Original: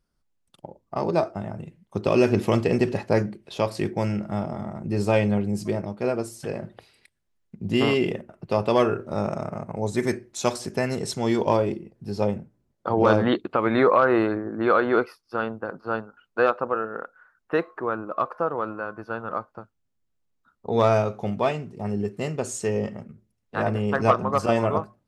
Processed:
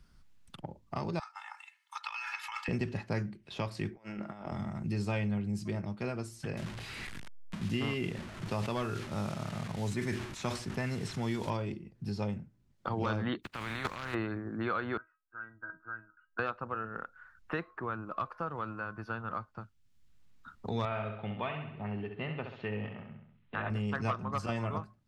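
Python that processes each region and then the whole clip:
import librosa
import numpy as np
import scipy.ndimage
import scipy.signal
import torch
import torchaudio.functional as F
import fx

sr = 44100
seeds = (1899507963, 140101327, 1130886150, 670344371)

y = fx.chain(x, sr, fx.steep_highpass(hz=910.0, slope=48),
    fx.over_compress(threshold_db=-37.0, ratio=-1.0),
    fx.comb(ms=2.3, depth=0.83), at=(1.19, 2.68))
y = fx.chain(y, sr, fx.highpass(hz=350.0, slope=12),
    fx.high_shelf(hz=3400.0, db=-11.0),
    fx.over_compress(threshold_db=-37.0, ratio=-0.5), at=(3.95, 4.52))
y = fx.chain(y, sr, fx.delta_mod(bps=64000, step_db=-35.0),
    fx.sustainer(db_per_s=75.0), at=(6.57, 11.5))
y = fx.spec_flatten(y, sr, power=0.42, at=(13.42, 14.13), fade=0.02)
y = fx.level_steps(y, sr, step_db=16, at=(13.42, 14.13), fade=0.02)
y = fx.chain(y, sr, fx.ladder_lowpass(hz=1600.0, resonance_pct=85),
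    fx.comb_fb(f0_hz=320.0, decay_s=0.18, harmonics='all', damping=0.0, mix_pct=90), at=(14.97, 16.39))
y = fx.chain(y, sr, fx.steep_lowpass(hz=3600.0, slope=48),
    fx.low_shelf(hz=280.0, db=-9.5),
    fx.echo_feedback(ms=66, feedback_pct=46, wet_db=-7.0), at=(20.85, 23.7))
y = fx.lowpass(y, sr, hz=2700.0, slope=6)
y = fx.peak_eq(y, sr, hz=510.0, db=-13.5, octaves=2.2)
y = fx.band_squash(y, sr, depth_pct=70)
y = y * librosa.db_to_amplitude(-3.0)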